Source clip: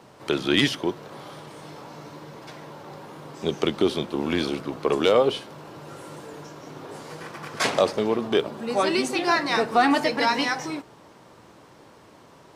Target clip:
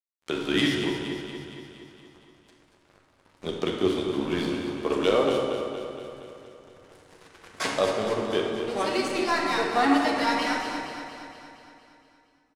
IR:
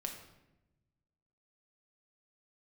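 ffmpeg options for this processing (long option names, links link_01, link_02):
-filter_complex "[0:a]aeval=exprs='sgn(val(0))*max(abs(val(0))-0.0178,0)':channel_layout=same,aecho=1:1:233|466|699|932|1165|1398|1631|1864:0.376|0.226|0.135|0.0812|0.0487|0.0292|0.0175|0.0105[link_01];[1:a]atrim=start_sample=2205,asetrate=22491,aresample=44100[link_02];[link_01][link_02]afir=irnorm=-1:irlink=0,volume=-5.5dB"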